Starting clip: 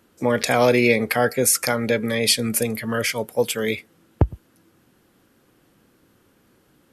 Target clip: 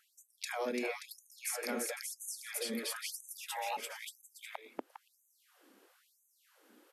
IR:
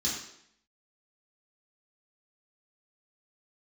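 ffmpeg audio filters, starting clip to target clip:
-filter_complex "[0:a]aecho=1:1:340|578|744.6|861.2|942.9:0.631|0.398|0.251|0.158|0.1,asettb=1/sr,asplit=3[link_01][link_02][link_03];[link_01]atrim=end=3.334[link_04];[link_02]atrim=start=3.33:end=3.77,asetpts=PTS-STARTPTS,afade=type=in:duration=0.004:curve=qsin,afade=type=out:start_time=0.436:duration=0.004:curve=qsin,afreqshift=370[link_05];[link_03]atrim=start=3.766[link_06];[link_04][link_05]acrossfade=duration=0.004:curve1=hsin:curve2=qsin[link_07];[link_07][link_06]acrossfade=duration=0.004:curve1=qsin:curve2=hsin,acrossover=split=160[link_08][link_09];[link_09]acompressor=threshold=-32dB:ratio=4[link_10];[link_08][link_10]amix=inputs=2:normalize=0,afftfilt=real='re*gte(b*sr/1024,200*pow(6200/200,0.5+0.5*sin(2*PI*1*pts/sr)))':imag='im*gte(b*sr/1024,200*pow(6200/200,0.5+0.5*sin(2*PI*1*pts/sr)))':win_size=1024:overlap=0.75,volume=-5dB"

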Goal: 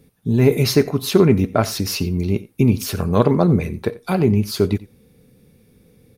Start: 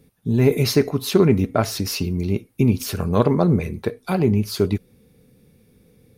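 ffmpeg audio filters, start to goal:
ffmpeg -i in.wav -af "aecho=1:1:89:0.1,volume=2dB" out.wav

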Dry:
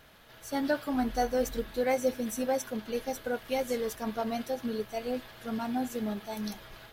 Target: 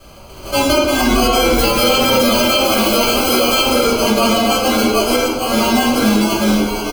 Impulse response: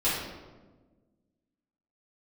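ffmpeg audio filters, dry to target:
-filter_complex "[0:a]asplit=7[link_01][link_02][link_03][link_04][link_05][link_06][link_07];[link_02]adelay=451,afreqshift=85,volume=-6dB[link_08];[link_03]adelay=902,afreqshift=170,volume=-12.6dB[link_09];[link_04]adelay=1353,afreqshift=255,volume=-19.1dB[link_10];[link_05]adelay=1804,afreqshift=340,volume=-25.7dB[link_11];[link_06]adelay=2255,afreqshift=425,volume=-32.2dB[link_12];[link_07]adelay=2706,afreqshift=510,volume=-38.8dB[link_13];[link_01][link_08][link_09][link_10][link_11][link_12][link_13]amix=inputs=7:normalize=0,acrusher=samples=24:mix=1:aa=0.000001,asettb=1/sr,asplit=3[link_14][link_15][link_16];[link_14]atrim=end=1.544[link_17];[link_15]atrim=start=1.54:end=3.69,asetpts=PTS-STARTPTS,afade=type=in:duration=0.004:curve=qsin,afade=type=out:start_time=2.146:duration=0.004:curve=qsin,aemphasis=mode=production:type=75kf[link_18];[link_16]atrim=start=3.686[link_19];[link_17][link_18]acrossfade=duration=0.004:curve1=hsin:curve2=qsin[link_20];[link_20][link_19]acrossfade=duration=0.004:curve1=qsin:curve2=hsin,asoftclip=type=tanh:threshold=-3.5dB,acrossover=split=4400[link_21][link_22];[link_22]acompressor=threshold=-34dB:ratio=4:attack=1:release=60[link_23];[link_21][link_23]amix=inputs=2:normalize=0,highshelf=frequency=2500:gain=8.5[link_24];[1:a]atrim=start_sample=2205,asetrate=52920,aresample=44100[link_25];[link_24][link_25]afir=irnorm=-1:irlink=0,alimiter=level_in=9.5dB:limit=-1dB:release=50:level=0:latency=1,volume=-3dB"

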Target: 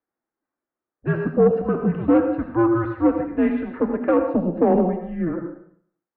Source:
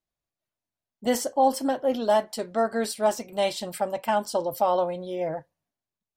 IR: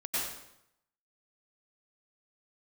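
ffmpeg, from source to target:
-filter_complex "[0:a]highpass=frequency=540:width_type=q:width=0.5412,highpass=frequency=540:width_type=q:width=1.307,lowpass=frequency=2100:width_type=q:width=0.5176,lowpass=frequency=2100:width_type=q:width=0.7071,lowpass=frequency=2100:width_type=q:width=1.932,afreqshift=-340,acontrast=60,asplit=2[link_01][link_02];[1:a]atrim=start_sample=2205,asetrate=57330,aresample=44100[link_03];[link_02][link_03]afir=irnorm=-1:irlink=0,volume=-7dB[link_04];[link_01][link_04]amix=inputs=2:normalize=0,asoftclip=type=tanh:threshold=-7dB"

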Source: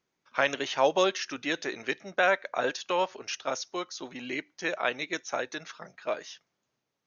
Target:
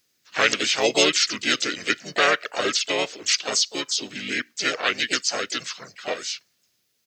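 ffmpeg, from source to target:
ffmpeg -i in.wav -filter_complex "[0:a]equalizer=frequency=1000:width_type=o:width=0.64:gain=-12,crystalizer=i=5.5:c=0,asplit=4[link_01][link_02][link_03][link_04];[link_02]asetrate=35002,aresample=44100,atempo=1.25992,volume=0dB[link_05];[link_03]asetrate=52444,aresample=44100,atempo=0.840896,volume=-6dB[link_06];[link_04]asetrate=58866,aresample=44100,atempo=0.749154,volume=-17dB[link_07];[link_01][link_05][link_06][link_07]amix=inputs=4:normalize=0" out.wav

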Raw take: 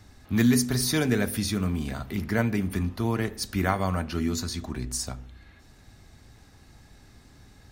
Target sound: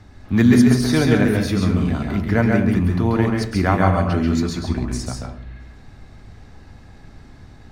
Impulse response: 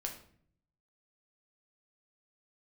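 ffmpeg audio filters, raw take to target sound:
-filter_complex "[0:a]aemphasis=mode=reproduction:type=75kf,asplit=2[link_01][link_02];[1:a]atrim=start_sample=2205,adelay=135[link_03];[link_02][link_03]afir=irnorm=-1:irlink=0,volume=-1dB[link_04];[link_01][link_04]amix=inputs=2:normalize=0,volume=7dB"

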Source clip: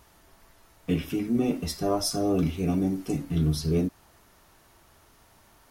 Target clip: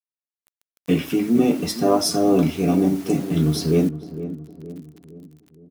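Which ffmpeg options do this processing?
ffmpeg -i in.wav -filter_complex "[0:a]highpass=170,highshelf=frequency=3600:gain=-3,dynaudnorm=framelen=250:gausssize=3:maxgain=8.5dB,acrusher=bits=6:mix=0:aa=0.000001,asplit=2[link_01][link_02];[link_02]adelay=463,lowpass=frequency=950:poles=1,volume=-12dB,asplit=2[link_03][link_04];[link_04]adelay=463,lowpass=frequency=950:poles=1,volume=0.51,asplit=2[link_05][link_06];[link_06]adelay=463,lowpass=frequency=950:poles=1,volume=0.51,asplit=2[link_07][link_08];[link_08]adelay=463,lowpass=frequency=950:poles=1,volume=0.51,asplit=2[link_09][link_10];[link_10]adelay=463,lowpass=frequency=950:poles=1,volume=0.51[link_11];[link_03][link_05][link_07][link_09][link_11]amix=inputs=5:normalize=0[link_12];[link_01][link_12]amix=inputs=2:normalize=0" out.wav

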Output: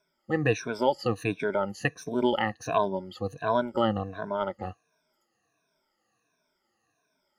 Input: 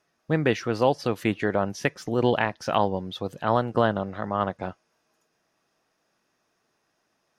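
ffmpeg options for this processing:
ffmpeg -i in.wav -af "afftfilt=real='re*pow(10,23/40*sin(2*PI*(1.6*log(max(b,1)*sr/1024/100)/log(2)-(-1.4)*(pts-256)/sr)))':imag='im*pow(10,23/40*sin(2*PI*(1.6*log(max(b,1)*sr/1024/100)/log(2)-(-1.4)*(pts-256)/sr)))':win_size=1024:overlap=0.75,volume=-8dB" out.wav

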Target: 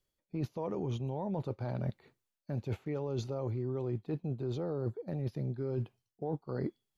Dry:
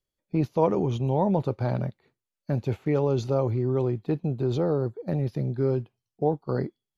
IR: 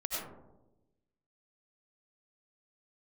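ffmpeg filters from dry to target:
-af "alimiter=limit=-16.5dB:level=0:latency=1:release=52,areverse,acompressor=threshold=-35dB:ratio=10,areverse,volume=3dB"

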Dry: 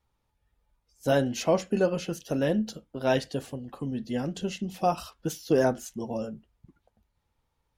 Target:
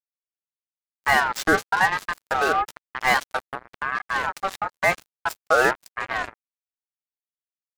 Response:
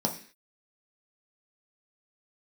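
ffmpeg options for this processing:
-af "acrusher=bits=4:mix=0:aa=0.5,aeval=exprs='val(0)*sin(2*PI*1200*n/s+1200*0.2/1*sin(2*PI*1*n/s))':channel_layout=same,volume=7dB"

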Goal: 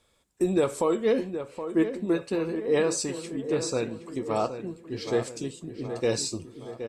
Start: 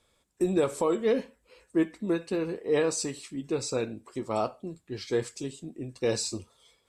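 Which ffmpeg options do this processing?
ffmpeg -i in.wav -filter_complex "[0:a]asplit=2[link_01][link_02];[link_02]adelay=770,lowpass=frequency=2300:poles=1,volume=-9.5dB,asplit=2[link_03][link_04];[link_04]adelay=770,lowpass=frequency=2300:poles=1,volume=0.55,asplit=2[link_05][link_06];[link_06]adelay=770,lowpass=frequency=2300:poles=1,volume=0.55,asplit=2[link_07][link_08];[link_08]adelay=770,lowpass=frequency=2300:poles=1,volume=0.55,asplit=2[link_09][link_10];[link_10]adelay=770,lowpass=frequency=2300:poles=1,volume=0.55,asplit=2[link_11][link_12];[link_12]adelay=770,lowpass=frequency=2300:poles=1,volume=0.55[link_13];[link_01][link_03][link_05][link_07][link_09][link_11][link_13]amix=inputs=7:normalize=0,volume=1.5dB" out.wav

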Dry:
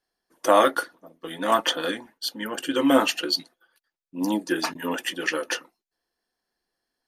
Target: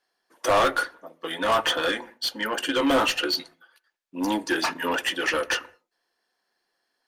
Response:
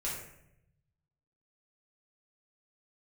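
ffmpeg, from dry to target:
-filter_complex "[0:a]asplit=2[link_01][link_02];[link_02]highpass=frequency=720:poles=1,volume=23dB,asoftclip=type=tanh:threshold=-4dB[link_03];[link_01][link_03]amix=inputs=2:normalize=0,lowpass=frequency=4400:poles=1,volume=-6dB,asplit=2[link_04][link_05];[link_05]aemphasis=mode=reproduction:type=75kf[link_06];[1:a]atrim=start_sample=2205,afade=type=out:start_time=0.26:duration=0.01,atrim=end_sample=11907[link_07];[link_06][link_07]afir=irnorm=-1:irlink=0,volume=-18.5dB[link_08];[link_04][link_08]amix=inputs=2:normalize=0,volume=-9dB"

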